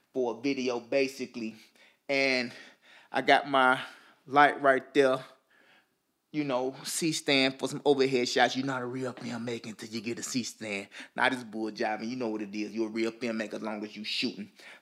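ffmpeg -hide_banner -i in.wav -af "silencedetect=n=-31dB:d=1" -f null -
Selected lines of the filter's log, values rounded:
silence_start: 5.20
silence_end: 6.36 | silence_duration: 1.16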